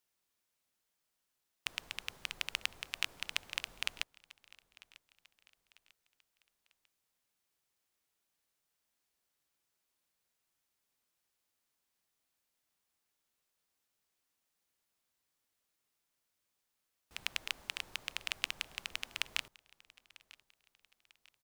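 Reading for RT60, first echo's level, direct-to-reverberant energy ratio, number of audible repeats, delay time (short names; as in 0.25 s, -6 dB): none, -22.0 dB, none, 2, 0.946 s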